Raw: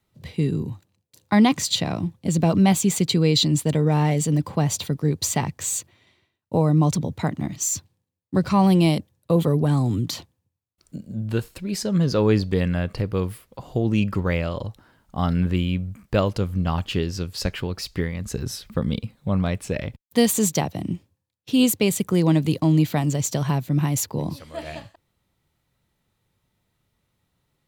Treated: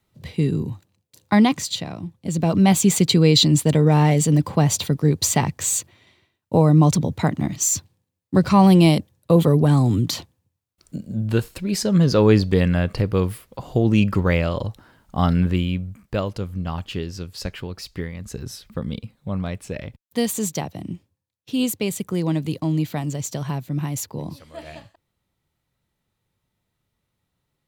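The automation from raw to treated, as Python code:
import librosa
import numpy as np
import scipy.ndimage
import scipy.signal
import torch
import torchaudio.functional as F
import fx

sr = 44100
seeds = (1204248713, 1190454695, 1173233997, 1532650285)

y = fx.gain(x, sr, db=fx.line((1.33, 2.0), (1.95, -7.0), (2.85, 4.0), (15.24, 4.0), (16.23, -4.0)))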